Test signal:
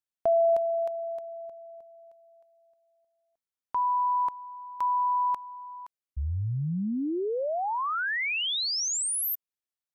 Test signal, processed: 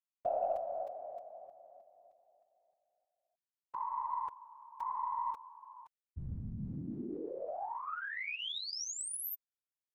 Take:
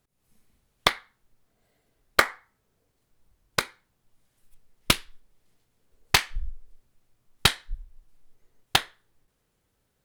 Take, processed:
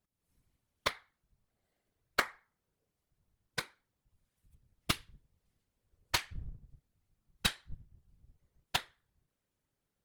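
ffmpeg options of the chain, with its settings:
ffmpeg -i in.wav -af "afftfilt=real='hypot(re,im)*cos(2*PI*random(0))':imag='hypot(re,im)*sin(2*PI*random(1))':win_size=512:overlap=0.75,aeval=exprs='0.447*(cos(1*acos(clip(val(0)/0.447,-1,1)))-cos(1*PI/2))+0.112*(cos(2*acos(clip(val(0)/0.447,-1,1)))-cos(2*PI/2))+0.0112*(cos(8*acos(clip(val(0)/0.447,-1,1)))-cos(8*PI/2))':channel_layout=same,volume=-5.5dB" out.wav

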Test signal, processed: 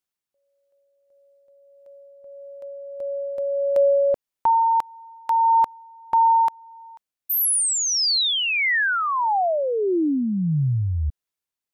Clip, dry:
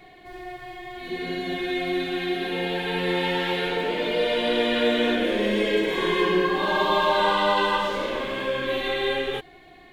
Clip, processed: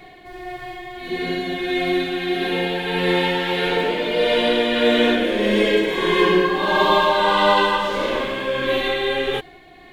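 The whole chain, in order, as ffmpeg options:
ffmpeg -i in.wav -af "tremolo=f=1.6:d=0.3,volume=6dB" out.wav

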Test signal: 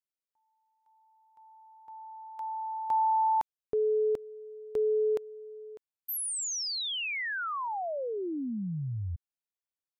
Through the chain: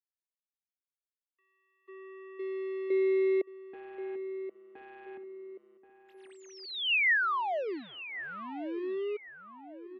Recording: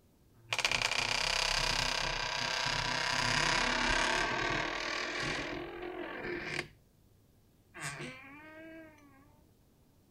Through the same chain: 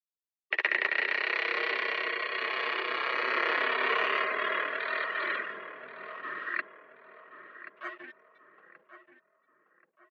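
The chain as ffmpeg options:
ffmpeg -i in.wav -filter_complex "[0:a]afftfilt=real='re*gte(hypot(re,im),0.0178)':imag='im*gte(hypot(re,im),0.0178)':win_size=1024:overlap=0.75,acrossover=split=2600[link_01][link_02];[link_02]acompressor=threshold=-38dB:ratio=4:attack=1:release=60[link_03];[link_01][link_03]amix=inputs=2:normalize=0,asplit=2[link_04][link_05];[link_05]asoftclip=type=tanh:threshold=-32dB,volume=-8dB[link_06];[link_04][link_06]amix=inputs=2:normalize=0,afreqshift=-500,aeval=exprs='sgn(val(0))*max(abs(val(0))-0.00299,0)':channel_layout=same,highpass=frequency=380:width=0.5412,highpass=frequency=380:width=1.3066,equalizer=frequency=490:width_type=q:width=4:gain=-5,equalizer=frequency=860:width_type=q:width=4:gain=-3,equalizer=frequency=1900:width_type=q:width=4:gain=6,equalizer=frequency=2700:width_type=q:width=4:gain=6,lowpass=frequency=3400:width=0.5412,lowpass=frequency=3400:width=1.3066,asplit=2[link_07][link_08];[link_08]adelay=1080,lowpass=frequency=1800:poles=1,volume=-11dB,asplit=2[link_09][link_10];[link_10]adelay=1080,lowpass=frequency=1800:poles=1,volume=0.43,asplit=2[link_11][link_12];[link_12]adelay=1080,lowpass=frequency=1800:poles=1,volume=0.43,asplit=2[link_13][link_14];[link_14]adelay=1080,lowpass=frequency=1800:poles=1,volume=0.43[link_15];[link_07][link_09][link_11][link_13][link_15]amix=inputs=5:normalize=0,volume=2.5dB" out.wav

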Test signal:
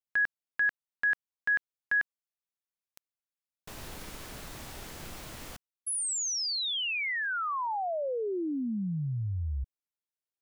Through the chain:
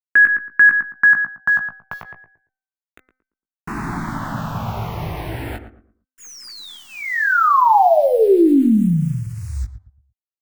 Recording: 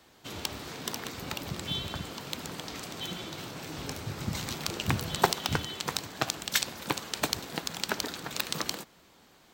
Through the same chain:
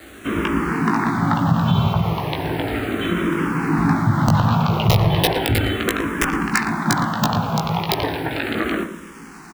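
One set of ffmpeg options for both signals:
ffmpeg -i in.wav -filter_complex "[0:a]highpass=frequency=110:poles=1,aemphasis=mode=reproduction:type=50fm,aeval=exprs='(tanh(3.98*val(0)+0.05)-tanh(0.05))/3.98':channel_layout=same,lowpass=1400,equalizer=frequency=520:width=1.6:gain=-11,acrusher=bits=10:mix=0:aa=0.000001,bandreject=frequency=257.1:width_type=h:width=4,bandreject=frequency=514.2:width_type=h:width=4,bandreject=frequency=771.3:width_type=h:width=4,bandreject=frequency=1028.4:width_type=h:width=4,bandreject=frequency=1285.5:width_type=h:width=4,bandreject=frequency=1542.6:width_type=h:width=4,bandreject=frequency=1799.7:width_type=h:width=4,bandreject=frequency=2056.8:width_type=h:width=4,bandreject=frequency=2313.9:width_type=h:width=4,aeval=exprs='(mod(15.8*val(0)+1,2)-1)/15.8':channel_layout=same,asplit=2[link_01][link_02];[link_02]adelay=18,volume=-6dB[link_03];[link_01][link_03]amix=inputs=2:normalize=0,asplit=2[link_04][link_05];[link_05]adelay=114,lowpass=frequency=1100:poles=1,volume=-9dB,asplit=2[link_06][link_07];[link_07]adelay=114,lowpass=frequency=1100:poles=1,volume=0.31,asplit=2[link_08][link_09];[link_09]adelay=114,lowpass=frequency=1100:poles=1,volume=0.31,asplit=2[link_10][link_11];[link_11]adelay=114,lowpass=frequency=1100:poles=1,volume=0.31[link_12];[link_06][link_08][link_10][link_12]amix=inputs=4:normalize=0[link_13];[link_04][link_13]amix=inputs=2:normalize=0,alimiter=level_in=30dB:limit=-1dB:release=50:level=0:latency=1,asplit=2[link_14][link_15];[link_15]afreqshift=-0.35[link_16];[link_14][link_16]amix=inputs=2:normalize=1,volume=-4dB" out.wav

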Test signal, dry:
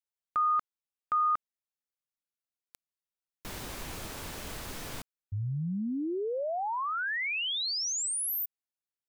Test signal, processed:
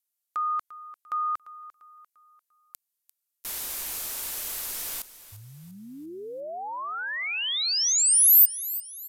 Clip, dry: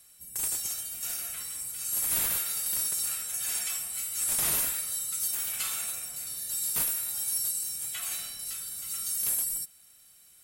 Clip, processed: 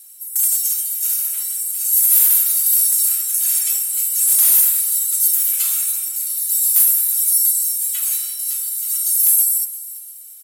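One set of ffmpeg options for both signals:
ffmpeg -i in.wav -filter_complex "[0:a]asubboost=boost=4:cutoff=70,aresample=32000,aresample=44100,asplit=2[link_01][link_02];[link_02]aecho=0:1:346|692|1038|1384:0.158|0.065|0.0266|0.0109[link_03];[link_01][link_03]amix=inputs=2:normalize=0,volume=20dB,asoftclip=hard,volume=-20dB,aemphasis=mode=production:type=riaa,volume=-1.5dB" out.wav

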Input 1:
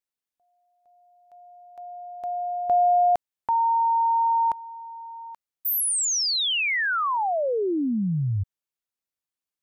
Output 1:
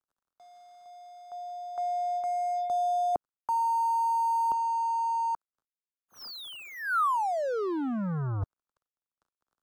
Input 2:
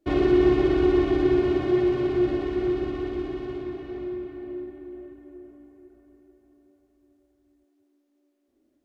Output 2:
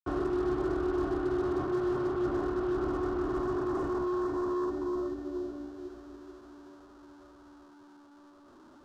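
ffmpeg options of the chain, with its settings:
ffmpeg -i in.wav -filter_complex "[0:a]aeval=exprs='val(0)+0.5*0.02*sgn(val(0))':channel_layout=same,lowpass=frequency=3700:width=0.5412,lowpass=frequency=3700:width=1.3066,areverse,acompressor=threshold=-29dB:ratio=5:attack=12:release=355:knee=1:detection=peak,areverse,acrusher=bits=5:mix=0:aa=0.5,acrossover=split=330|560[link_01][link_02][link_03];[link_03]asoftclip=type=hard:threshold=-27dB[link_04];[link_01][link_02][link_04]amix=inputs=3:normalize=0,highshelf=frequency=1700:width_type=q:width=3:gain=-8.5" out.wav

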